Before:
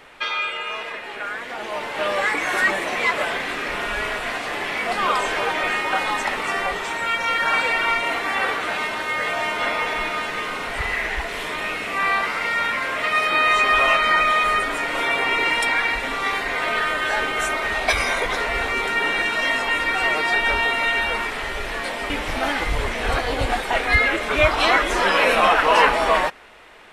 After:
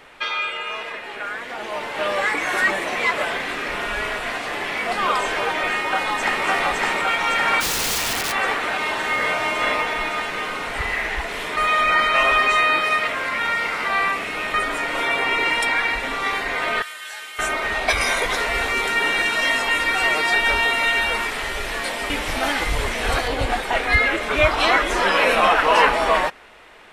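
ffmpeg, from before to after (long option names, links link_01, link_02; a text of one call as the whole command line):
ffmpeg -i in.wav -filter_complex "[0:a]asplit=2[link_01][link_02];[link_02]afade=type=in:start_time=5.66:duration=0.01,afade=type=out:start_time=6.45:duration=0.01,aecho=0:1:560|1120|1680|2240|2800|3360|3920|4480|5040|5600|6160|6720:0.841395|0.673116|0.538493|0.430794|0.344635|0.275708|0.220567|0.176453|0.141163|0.11293|0.0903441|0.0722753[link_03];[link_01][link_03]amix=inputs=2:normalize=0,asplit=3[link_04][link_05][link_06];[link_04]afade=type=out:start_time=7.6:duration=0.02[link_07];[link_05]aeval=exprs='(mod(7.5*val(0)+1,2)-1)/7.5':channel_layout=same,afade=type=in:start_time=7.6:duration=0.02,afade=type=out:start_time=8.31:duration=0.02[link_08];[link_06]afade=type=in:start_time=8.31:duration=0.02[link_09];[link_07][link_08][link_09]amix=inputs=3:normalize=0,asplit=3[link_10][link_11][link_12];[link_10]afade=type=out:start_time=8.85:duration=0.02[link_13];[link_11]asplit=2[link_14][link_15];[link_15]adelay=47,volume=-4dB[link_16];[link_14][link_16]amix=inputs=2:normalize=0,afade=type=in:start_time=8.85:duration=0.02,afade=type=out:start_time=9.81:duration=0.02[link_17];[link_12]afade=type=in:start_time=9.81:duration=0.02[link_18];[link_13][link_17][link_18]amix=inputs=3:normalize=0,asettb=1/sr,asplit=3[link_19][link_20][link_21];[link_19]atrim=end=16.824[link_22];[link_20]atrim=start=16.82:end=17.39,asetpts=PTS-STARTPTS,afade=type=in:duration=0.004:curve=qsin,afade=type=out:start_time=0.566:duration=0.004:curve=qsin,aderivative[link_23];[link_21]atrim=start=17.386[link_24];[link_22][link_23]acrossfade=duration=0.004:curve1=hsin:curve2=qsin[link_25];[link_25][link_24]acrossfade=duration=0.004:curve1=qsin:curve2=hsin,asettb=1/sr,asplit=3[link_26][link_27][link_28];[link_26]atrim=end=18.014[link_29];[link_27]atrim=start=18.01:end=23.28,asetpts=PTS-STARTPTS,afade=type=in:duration=0.004:curve=qsin,afade=type=out:start_time=5.266:duration=0.004:curve=qsin,highshelf=frequency=4200:gain=7.5[link_30];[link_28]atrim=start=23.276[link_31];[link_29][link_30]acrossfade=duration=0.004:curve1=hsin:curve2=qsin[link_32];[link_32][link_31]acrossfade=duration=0.004:curve1=qsin:curve2=hsin,asplit=3[link_33][link_34][link_35];[link_33]atrim=end=11.572[link_36];[link_34]atrim=start=11.568:end=14.542,asetpts=PTS-STARTPTS,areverse[link_37];[link_35]atrim=start=14.538[link_38];[link_36][link_37]acrossfade=duration=0.004:curve1=hsin:curve2=hsin[link_39];[link_39][link_38]acrossfade=duration=0.004:curve1=hsin:curve2=hsin" out.wav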